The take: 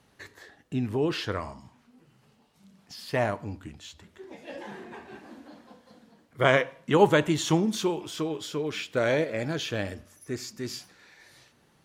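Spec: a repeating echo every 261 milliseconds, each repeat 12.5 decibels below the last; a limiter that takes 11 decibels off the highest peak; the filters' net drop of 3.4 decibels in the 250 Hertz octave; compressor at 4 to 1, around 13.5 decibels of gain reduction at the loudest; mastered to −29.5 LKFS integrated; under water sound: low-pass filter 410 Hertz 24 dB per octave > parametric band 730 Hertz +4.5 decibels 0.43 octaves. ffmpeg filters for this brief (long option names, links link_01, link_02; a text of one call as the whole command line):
ffmpeg -i in.wav -af "equalizer=frequency=250:width_type=o:gain=-4.5,acompressor=threshold=-31dB:ratio=4,alimiter=level_in=4dB:limit=-24dB:level=0:latency=1,volume=-4dB,lowpass=frequency=410:width=0.5412,lowpass=frequency=410:width=1.3066,equalizer=frequency=730:width_type=o:width=0.43:gain=4.5,aecho=1:1:261|522|783:0.237|0.0569|0.0137,volume=13.5dB" out.wav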